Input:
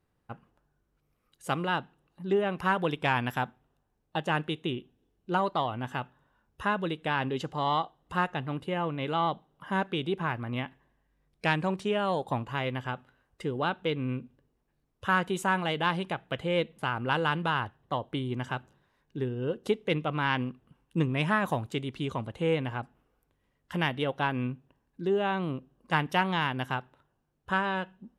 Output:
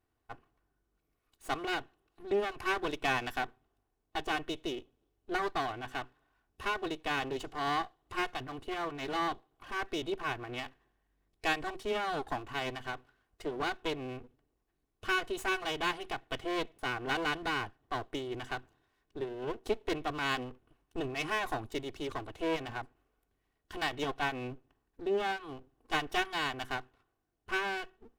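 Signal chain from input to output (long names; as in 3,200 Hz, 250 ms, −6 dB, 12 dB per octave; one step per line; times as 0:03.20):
lower of the sound and its delayed copy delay 2.7 ms
level −3 dB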